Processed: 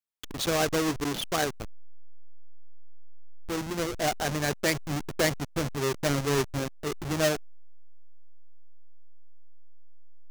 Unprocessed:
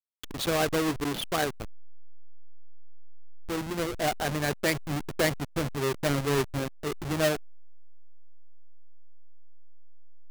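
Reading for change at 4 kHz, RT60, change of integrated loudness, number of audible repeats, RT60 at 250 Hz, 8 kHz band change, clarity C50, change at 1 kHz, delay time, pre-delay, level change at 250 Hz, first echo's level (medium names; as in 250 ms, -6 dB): +1.0 dB, no reverb, +0.5 dB, no echo, no reverb, +3.0 dB, no reverb, 0.0 dB, no echo, no reverb, 0.0 dB, no echo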